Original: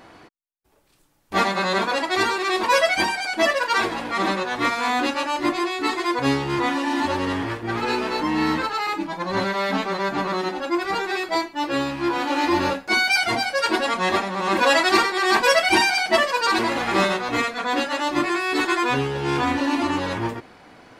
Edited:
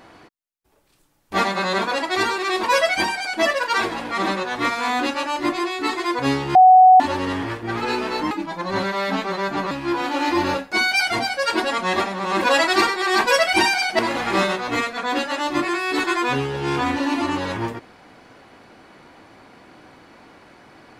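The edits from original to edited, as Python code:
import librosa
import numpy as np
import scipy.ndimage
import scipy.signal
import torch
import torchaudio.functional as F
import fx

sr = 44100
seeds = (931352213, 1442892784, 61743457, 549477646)

y = fx.edit(x, sr, fx.bleep(start_s=6.55, length_s=0.45, hz=744.0, db=-6.0),
    fx.cut(start_s=8.31, length_s=0.61),
    fx.cut(start_s=10.32, length_s=1.55),
    fx.cut(start_s=16.15, length_s=0.45), tone=tone)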